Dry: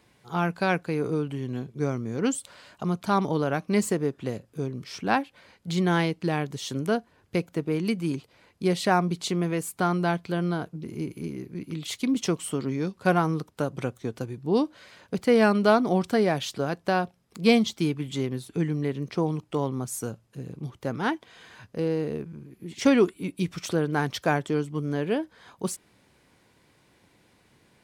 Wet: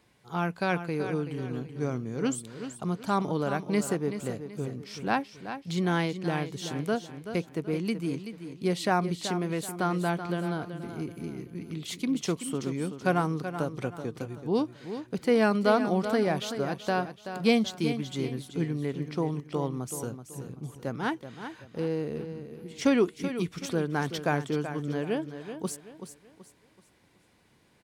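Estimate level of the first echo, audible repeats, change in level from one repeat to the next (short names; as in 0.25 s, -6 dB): -10.0 dB, 3, -9.0 dB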